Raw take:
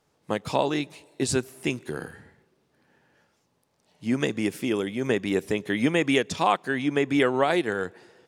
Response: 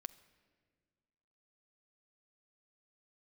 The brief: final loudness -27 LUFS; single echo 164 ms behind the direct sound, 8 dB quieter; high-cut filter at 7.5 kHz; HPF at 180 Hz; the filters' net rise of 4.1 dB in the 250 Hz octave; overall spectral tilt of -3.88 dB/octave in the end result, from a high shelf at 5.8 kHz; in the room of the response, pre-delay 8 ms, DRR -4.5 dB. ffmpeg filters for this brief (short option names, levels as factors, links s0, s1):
-filter_complex "[0:a]highpass=180,lowpass=7500,equalizer=f=250:t=o:g=6,highshelf=f=5800:g=5,aecho=1:1:164:0.398,asplit=2[s0][s1];[1:a]atrim=start_sample=2205,adelay=8[s2];[s1][s2]afir=irnorm=-1:irlink=0,volume=2.82[s3];[s0][s3]amix=inputs=2:normalize=0,volume=0.335"